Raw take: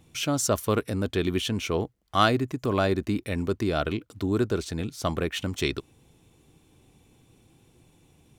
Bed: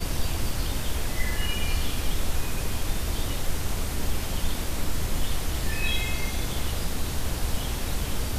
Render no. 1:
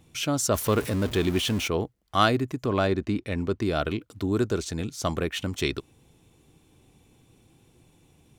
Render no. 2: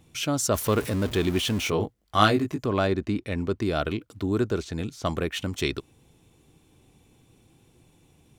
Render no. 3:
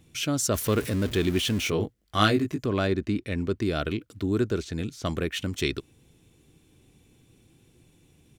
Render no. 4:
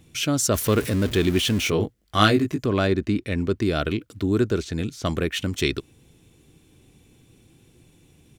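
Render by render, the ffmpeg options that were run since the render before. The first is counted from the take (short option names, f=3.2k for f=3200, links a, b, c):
-filter_complex "[0:a]asettb=1/sr,asplit=3[a][b][c];[a]atrim=end=0.544[d];[b]atrim=start=0.54:end=1.68,asetpts=PTS-STARTPTS,afade=t=in:d=0.004:c=qsin,afade=t=out:st=1.136:d=0.004:c=qsin,aeval=exprs='val(0)+0.5*0.0282*sgn(val(0))':c=same[e];[c]atrim=start=1.676[f];[d][e]acrossfade=d=0.004:c1=hsin:c2=qsin[g];[g][f]acrossfade=d=0.004:c1=qsin:c2=hsin,asettb=1/sr,asplit=3[h][i][j];[h]atrim=end=2.644[k];[i]atrim=start=2.64:end=3.62,asetpts=PTS-STARTPTS,afade=t=in:d=0.004:c=qsin,afade=t=out:st=0.976:d=0.004:c=qsin,adynamicsmooth=sensitivity=3.5:basefreq=6.5k[l];[j]atrim=start=3.616[m];[k][l]acrossfade=d=0.004:c1=hsin:c2=qsin[n];[n][m]acrossfade=d=0.004:c1=qsin:c2=hsin,asettb=1/sr,asplit=3[o][p][q];[o]atrim=end=4.384[r];[p]atrim=start=4.38:end=5.19,asetpts=PTS-STARTPTS,afade=t=in:d=0.004:c=qsin,afade=t=out:st=0.806:d=0.004:c=qsin,equalizer=f=6.7k:w=2:g=5.5[s];[q]atrim=start=5.186[t];[r][s]acrossfade=d=0.004:c1=hsin:c2=qsin[u];[u][t]acrossfade=d=0.004:c1=qsin:c2=hsin"
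-filter_complex "[0:a]asettb=1/sr,asplit=3[a][b][c];[a]atrim=end=1.644[d];[b]atrim=start=1.64:end=2.65,asetpts=PTS-STARTPTS,afade=t=in:d=0.004:c=qsin,afade=t=out:st=1.006:d=0.004:c=qsin,asplit=2[e][f];[f]adelay=19,volume=-4dB[g];[e][g]amix=inputs=2:normalize=0,atrim=end_sample=44541[h];[c]atrim=start=2.646[i];[d][h]acrossfade=d=0.004:c1=hsin:c2=qsin[j];[j][i]acrossfade=d=0.004:c1=qsin:c2=hsin,asettb=1/sr,asplit=3[k][l][m];[k]atrim=end=4.074[n];[l]atrim=start=4.07:end=5.06,asetpts=PTS-STARTPTS,afade=t=in:d=0.004:c=qsin,afade=t=out:st=0.986:d=0.004:c=qsin,acrossover=split=4000[o][p];[p]acompressor=threshold=-46dB:ratio=4:attack=1:release=60[q];[o][q]amix=inputs=2:normalize=0[r];[m]atrim=start=5.056[s];[n][r]acrossfade=d=0.004:c1=hsin:c2=qsin[t];[t][s]acrossfade=d=0.004:c1=qsin:c2=hsin"
-af "firequalizer=gain_entry='entry(350,0);entry(860,-7);entry(1600,0)':delay=0.05:min_phase=1"
-af "volume=4dB"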